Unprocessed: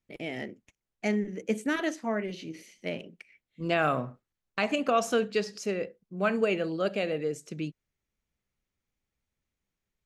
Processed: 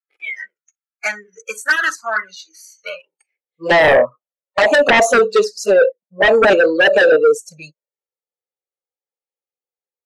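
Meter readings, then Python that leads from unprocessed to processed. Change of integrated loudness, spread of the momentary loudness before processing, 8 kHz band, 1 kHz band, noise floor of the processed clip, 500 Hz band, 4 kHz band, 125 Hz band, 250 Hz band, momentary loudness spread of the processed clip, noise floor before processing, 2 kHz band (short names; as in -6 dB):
+16.5 dB, 13 LU, +14.5 dB, +14.0 dB, under -85 dBFS, +16.5 dB, +15.0 dB, +1.5 dB, +5.0 dB, 19 LU, under -85 dBFS, +19.5 dB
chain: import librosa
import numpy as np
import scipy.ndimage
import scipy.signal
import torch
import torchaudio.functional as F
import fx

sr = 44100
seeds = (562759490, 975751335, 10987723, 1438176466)

p1 = fx.noise_reduce_blind(x, sr, reduce_db=28)
p2 = fx.peak_eq(p1, sr, hz=2800.0, db=-6.0, octaves=2.4)
p3 = fx.filter_sweep_highpass(p2, sr, from_hz=1400.0, to_hz=560.0, start_s=2.88, end_s=3.39, q=4.4)
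p4 = 10.0 ** (-17.5 / 20.0) * np.tanh(p3 / 10.0 ** (-17.5 / 20.0))
p5 = p3 + F.gain(torch.from_numpy(p4), -6.0).numpy()
p6 = fx.env_flanger(p5, sr, rest_ms=2.4, full_db=-19.5)
y = fx.fold_sine(p6, sr, drive_db=13, ceiling_db=-7.0)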